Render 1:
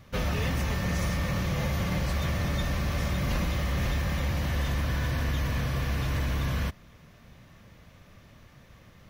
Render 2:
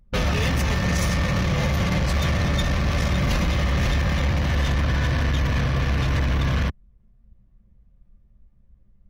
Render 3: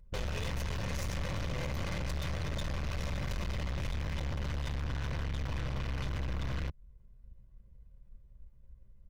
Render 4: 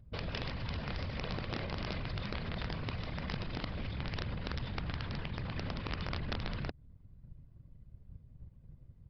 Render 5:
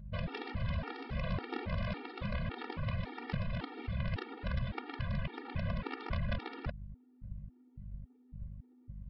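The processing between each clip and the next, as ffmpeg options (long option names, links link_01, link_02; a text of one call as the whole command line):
ffmpeg -i in.wav -filter_complex "[0:a]anlmdn=6.31,highshelf=frequency=3900:gain=9.5,asplit=2[link_01][link_02];[link_02]alimiter=level_in=3dB:limit=-24dB:level=0:latency=1:release=374,volume=-3dB,volume=2dB[link_03];[link_01][link_03]amix=inputs=2:normalize=0,volume=2.5dB" out.wav
ffmpeg -i in.wav -af "aecho=1:1:2:0.58,acompressor=threshold=-25dB:ratio=12,aeval=exprs='(tanh(44.7*val(0)+0.7)-tanh(0.7))/44.7':channel_layout=same" out.wav
ffmpeg -i in.wav -af "alimiter=level_in=9dB:limit=-24dB:level=0:latency=1:release=66,volume=-9dB,afftfilt=real='hypot(re,im)*cos(2*PI*random(0))':imag='hypot(re,im)*sin(2*PI*random(1))':win_size=512:overlap=0.75,aresample=11025,aeval=exprs='(mod(63.1*val(0)+1,2)-1)/63.1':channel_layout=same,aresample=44100,volume=7dB" out.wav
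ffmpeg -i in.wav -af "aeval=exprs='val(0)+0.00355*(sin(2*PI*50*n/s)+sin(2*PI*2*50*n/s)/2+sin(2*PI*3*50*n/s)/3+sin(2*PI*4*50*n/s)/4+sin(2*PI*5*50*n/s)/5)':channel_layout=same,lowpass=2700,afftfilt=real='re*gt(sin(2*PI*1.8*pts/sr)*(1-2*mod(floor(b*sr/1024/240),2)),0)':imag='im*gt(sin(2*PI*1.8*pts/sr)*(1-2*mod(floor(b*sr/1024/240),2)),0)':win_size=1024:overlap=0.75,volume=4dB" out.wav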